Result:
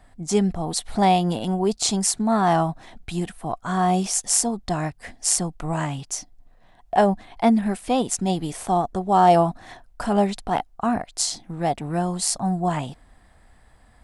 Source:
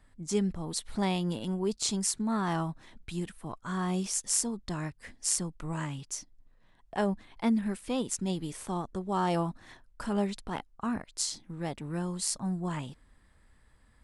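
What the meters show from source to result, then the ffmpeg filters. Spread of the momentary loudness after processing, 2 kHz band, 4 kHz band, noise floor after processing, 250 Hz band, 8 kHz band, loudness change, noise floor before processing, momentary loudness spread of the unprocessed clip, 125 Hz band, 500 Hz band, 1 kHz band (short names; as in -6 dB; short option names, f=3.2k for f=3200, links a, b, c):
11 LU, +8.5 dB, +8.0 dB, -54 dBFS, +8.0 dB, +8.0 dB, +10.0 dB, -63 dBFS, 10 LU, +8.0 dB, +12.0 dB, +15.5 dB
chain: -af "equalizer=f=720:t=o:w=0.35:g=13.5,volume=8dB"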